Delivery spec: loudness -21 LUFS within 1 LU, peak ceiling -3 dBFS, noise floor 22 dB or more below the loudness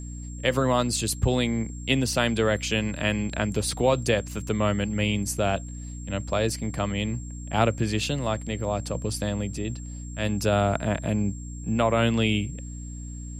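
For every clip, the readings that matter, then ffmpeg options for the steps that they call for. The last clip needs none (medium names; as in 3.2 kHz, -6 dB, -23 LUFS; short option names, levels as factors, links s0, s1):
hum 60 Hz; highest harmonic 300 Hz; hum level -34 dBFS; steady tone 7.5 kHz; tone level -45 dBFS; loudness -26.0 LUFS; peak level -7.0 dBFS; loudness target -21.0 LUFS
-> -af "bandreject=f=60:t=h:w=4,bandreject=f=120:t=h:w=4,bandreject=f=180:t=h:w=4,bandreject=f=240:t=h:w=4,bandreject=f=300:t=h:w=4"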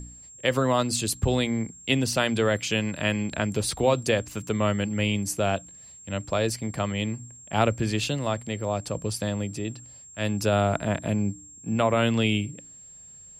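hum not found; steady tone 7.5 kHz; tone level -45 dBFS
-> -af "bandreject=f=7500:w=30"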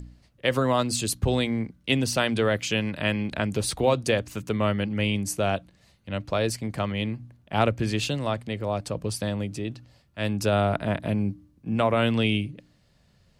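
steady tone not found; loudness -26.5 LUFS; peak level -7.5 dBFS; loudness target -21.0 LUFS
-> -af "volume=1.88,alimiter=limit=0.708:level=0:latency=1"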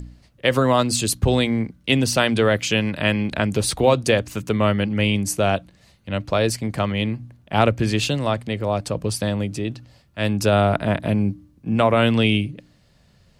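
loudness -21.0 LUFS; peak level -3.0 dBFS; noise floor -57 dBFS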